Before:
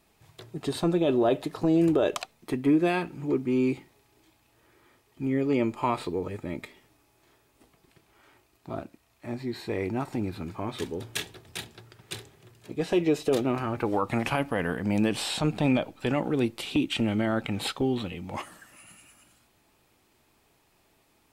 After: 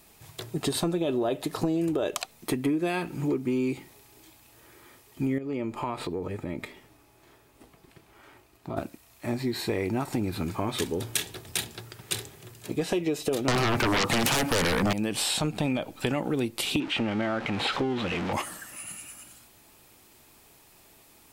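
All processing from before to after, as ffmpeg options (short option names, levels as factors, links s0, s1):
-filter_complex "[0:a]asettb=1/sr,asplit=3[s0][s1][s2];[s0]atrim=end=5.384[s3];[s1]atrim=start=5.38:end=8.77,asetpts=PTS-STARTPTS,afade=t=in:d=0.004:c=qsin,afade=t=out:st=3.386:d=0.004:c=qsin,highshelf=f=3900:g=-10.5,acompressor=threshold=0.0126:ratio=2.5:attack=3.2:release=140:knee=1:detection=peak[s4];[s2]atrim=start=8.766[s5];[s3][s4]acrossfade=d=0.004:c1=hsin:c2=qsin[s6];[s6][s5]acrossfade=d=0.004:c1=qsin:c2=hsin,asettb=1/sr,asplit=3[s7][s8][s9];[s7]atrim=end=13.484[s10];[s8]atrim=start=13.48:end=14.93,asetpts=PTS-STARTPTS,afade=t=in:d=0.004:c=qsin,afade=t=out:st=1.446:d=0.004:c=qsin,highpass=94,highshelf=f=11000:g=-5,aeval=exprs='0.224*sin(PI/2*6.31*val(0)/0.224)':c=same[s11];[s9]atrim=start=14.926[s12];[s10][s11]acrossfade=d=0.004:c1=hsin:c2=qsin[s13];[s13][s12]acrossfade=d=0.004:c1=qsin:c2=hsin,asettb=1/sr,asplit=3[s14][s15][s16];[s14]atrim=end=16.804[s17];[s15]atrim=start=16.8:end=18.33,asetpts=PTS-STARTPTS,afade=t=in:d=0.004:c=qsin,afade=t=out:st=1.526:d=0.004:c=qsin,aeval=exprs='val(0)+0.5*0.0316*sgn(val(0))':c=same,lowpass=2600,lowshelf=f=270:g=-9[s18];[s16]atrim=start=18.326[s19];[s17][s18]acrossfade=d=0.004:c1=hsin:c2=qsin[s20];[s20][s19]acrossfade=d=0.004:c1=qsin:c2=hsin,highshelf=f=6100:g=10,acompressor=threshold=0.0282:ratio=6,volume=2.11"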